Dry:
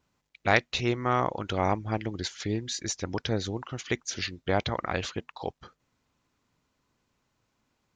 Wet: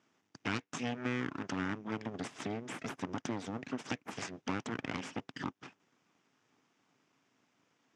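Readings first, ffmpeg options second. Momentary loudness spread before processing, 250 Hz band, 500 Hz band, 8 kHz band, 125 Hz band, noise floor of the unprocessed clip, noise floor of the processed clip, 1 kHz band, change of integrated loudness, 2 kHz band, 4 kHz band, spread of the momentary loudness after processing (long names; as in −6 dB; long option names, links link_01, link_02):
11 LU, −4.5 dB, −12.5 dB, −12.5 dB, −11.0 dB, −78 dBFS, −79 dBFS, −12.0 dB, −9.5 dB, −9.0 dB, −12.0 dB, 6 LU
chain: -af "acompressor=threshold=-40dB:ratio=3,aeval=exprs='abs(val(0))':channel_layout=same,highpass=frequency=120:width=0.5412,highpass=frequency=120:width=1.3066,equalizer=frequency=270:width_type=q:width=4:gain=7,equalizer=frequency=560:width_type=q:width=4:gain=-4,equalizer=frequency=4200:width_type=q:width=4:gain=-9,lowpass=frequency=6600:width=0.5412,lowpass=frequency=6600:width=1.3066,volume=6dB"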